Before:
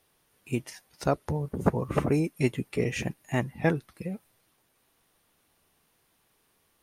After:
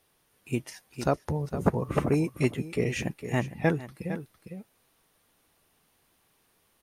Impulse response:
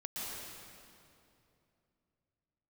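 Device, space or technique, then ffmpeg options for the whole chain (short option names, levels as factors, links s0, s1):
ducked delay: -filter_complex "[0:a]asplit=3[s0][s1][s2];[s1]adelay=456,volume=0.531[s3];[s2]apad=whole_len=321184[s4];[s3][s4]sidechaincompress=threshold=0.0398:ratio=8:attack=5.3:release=1120[s5];[s0][s5]amix=inputs=2:normalize=0"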